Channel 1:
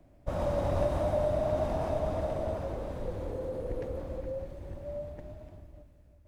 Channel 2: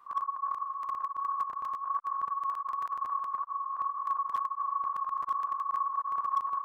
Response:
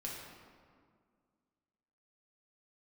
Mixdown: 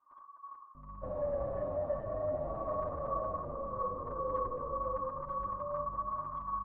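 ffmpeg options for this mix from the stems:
-filter_complex "[0:a]equalizer=f=540:w=2.8:g=9,asoftclip=type=tanh:threshold=-19dB,aeval=exprs='val(0)+0.00891*(sin(2*PI*50*n/s)+sin(2*PI*2*50*n/s)/2+sin(2*PI*3*50*n/s)/3+sin(2*PI*4*50*n/s)/4+sin(2*PI*5*50*n/s)/5)':c=same,adelay=750,volume=-10dB,asplit=2[a][b];[b]volume=-3.5dB[c];[1:a]aecho=1:1:3.3:0.61,volume=-1.5dB,afade=t=in:st=2.43:d=0.27:silence=0.281838,asplit=2[d][e];[e]volume=-7.5dB[f];[2:a]atrim=start_sample=2205[g];[c][f]amix=inputs=2:normalize=0[h];[h][g]afir=irnorm=-1:irlink=0[i];[a][d][i]amix=inputs=3:normalize=0,lowpass=1.1k,asplit=2[j][k];[k]adelay=7.7,afreqshift=-1.8[l];[j][l]amix=inputs=2:normalize=1"

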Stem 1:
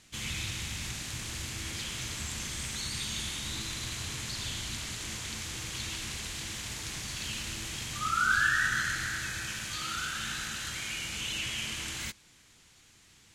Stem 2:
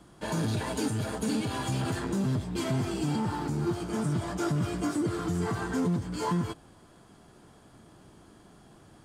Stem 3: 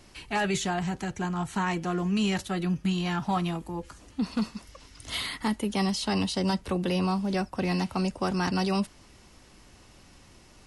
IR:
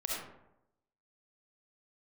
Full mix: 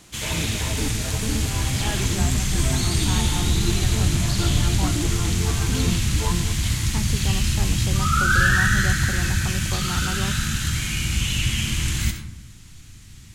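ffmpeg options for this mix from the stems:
-filter_complex "[0:a]asubboost=boost=9:cutoff=170,volume=3dB,asplit=2[a][b];[b]volume=-4.5dB[c];[1:a]volume=0dB[d];[2:a]adelay=1500,volume=-5dB[e];[3:a]atrim=start_sample=2205[f];[c][f]afir=irnorm=-1:irlink=0[g];[a][d][e][g]amix=inputs=4:normalize=0,highshelf=f=10k:g=8.5"

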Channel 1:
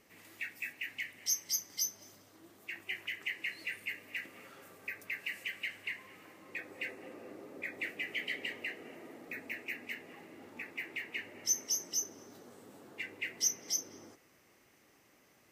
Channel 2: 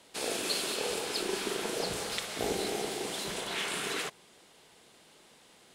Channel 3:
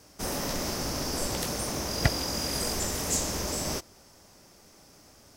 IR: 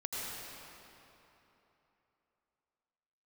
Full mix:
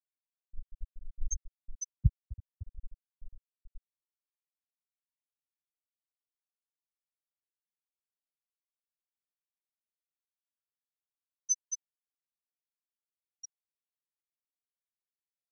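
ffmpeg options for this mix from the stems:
-filter_complex "[0:a]aecho=1:1:5.8:0.79,volume=-1dB,asplit=2[a][b];[b]volume=-12.5dB[c];[1:a]volume=-10.5dB[d];[2:a]volume=-7dB,asplit=2[e][f];[f]volume=-3.5dB[g];[3:a]atrim=start_sample=2205[h];[c][g]amix=inputs=2:normalize=0[i];[i][h]afir=irnorm=-1:irlink=0[j];[a][d][e][j]amix=inputs=4:normalize=0,lowshelf=f=98:g=10.5,afftfilt=real='re*gte(hypot(re,im),0.447)':imag='im*gte(hypot(re,im),0.447)':win_size=1024:overlap=0.75"

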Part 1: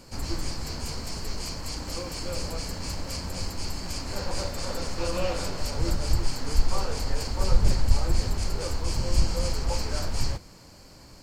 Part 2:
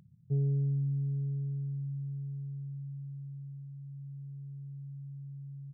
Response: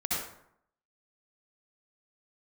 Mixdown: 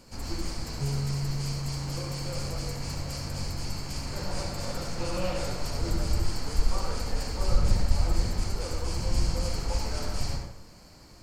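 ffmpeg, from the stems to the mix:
-filter_complex "[0:a]volume=-8dB,asplit=2[a][b];[b]volume=-4.5dB[c];[1:a]adelay=500,volume=-1dB[d];[2:a]atrim=start_sample=2205[e];[c][e]afir=irnorm=-1:irlink=0[f];[a][d][f]amix=inputs=3:normalize=0"

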